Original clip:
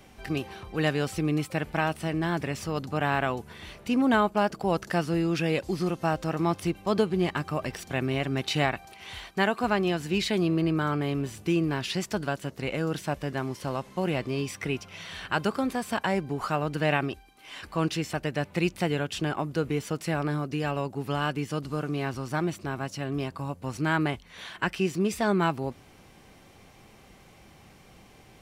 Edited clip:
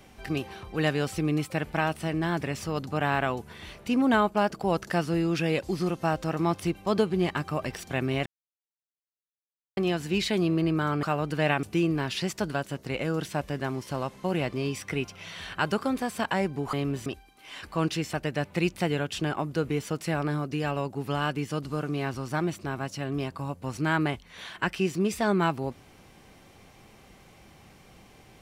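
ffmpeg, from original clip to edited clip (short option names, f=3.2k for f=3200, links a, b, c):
-filter_complex "[0:a]asplit=7[a][b][c][d][e][f][g];[a]atrim=end=8.26,asetpts=PTS-STARTPTS,afade=t=out:st=8.256:d=0.004:c=hsin[h];[b]atrim=start=8.26:end=9.77,asetpts=PTS-STARTPTS,volume=0[i];[c]atrim=start=9.77:end=11.032,asetpts=PTS-STARTPTS,afade=t=in:d=0.004:c=hsin[j];[d]atrim=start=16.458:end=17.062[k];[e]atrim=start=11.358:end=16.462[l];[f]atrim=start=11.028:end=11.362[m];[g]atrim=start=17.058[n];[h][i][j]concat=n=3:v=0:a=1[o];[o][k]acrossfade=d=0.004:c1=hsin:c2=hsin[p];[p][l]acrossfade=d=0.004:c1=hsin:c2=hsin[q];[q][m]acrossfade=d=0.004:c1=hsin:c2=hsin[r];[r][n]acrossfade=d=0.004:c1=hsin:c2=hsin"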